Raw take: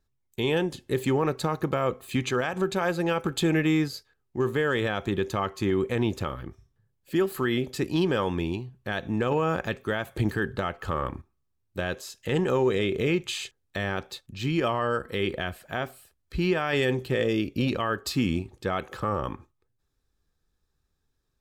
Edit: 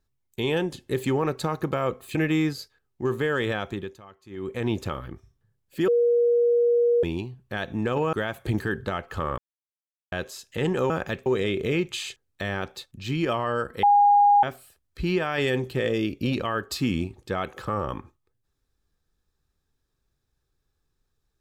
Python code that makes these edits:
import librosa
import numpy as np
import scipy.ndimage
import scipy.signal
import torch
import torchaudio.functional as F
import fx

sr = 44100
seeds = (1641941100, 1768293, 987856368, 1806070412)

y = fx.edit(x, sr, fx.cut(start_s=2.15, length_s=1.35),
    fx.fade_down_up(start_s=4.92, length_s=1.14, db=-20.0, fade_s=0.42),
    fx.bleep(start_s=7.23, length_s=1.15, hz=476.0, db=-17.0),
    fx.move(start_s=9.48, length_s=0.36, to_s=12.61),
    fx.silence(start_s=11.09, length_s=0.74),
    fx.bleep(start_s=15.18, length_s=0.6, hz=817.0, db=-13.5), tone=tone)